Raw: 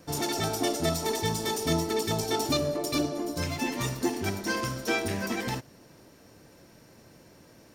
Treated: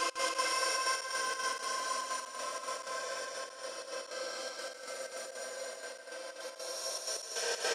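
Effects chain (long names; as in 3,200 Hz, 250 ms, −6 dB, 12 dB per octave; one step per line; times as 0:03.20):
Chebyshev band-pass filter 540–9,900 Hz, order 3
extreme stretch with random phases 32×, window 0.05 s, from 0:04.64
gate pattern "x.x.xxxx.x..x" 157 BPM −24 dB
on a send: loudspeakers that aren't time-aligned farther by 53 metres −7 dB, 83 metres −4 dB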